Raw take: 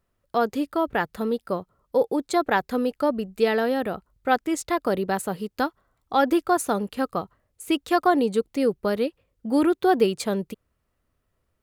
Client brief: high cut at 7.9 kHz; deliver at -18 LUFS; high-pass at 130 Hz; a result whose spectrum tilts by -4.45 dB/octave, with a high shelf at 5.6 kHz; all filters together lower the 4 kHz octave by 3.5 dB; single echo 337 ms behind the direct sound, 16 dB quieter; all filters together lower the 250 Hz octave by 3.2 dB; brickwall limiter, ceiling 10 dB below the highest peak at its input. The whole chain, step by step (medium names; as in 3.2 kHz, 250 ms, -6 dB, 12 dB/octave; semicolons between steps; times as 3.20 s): high-pass 130 Hz; low-pass 7.9 kHz; peaking EQ 250 Hz -4 dB; peaking EQ 4 kHz -7 dB; treble shelf 5.6 kHz +7 dB; peak limiter -17.5 dBFS; delay 337 ms -16 dB; trim +11.5 dB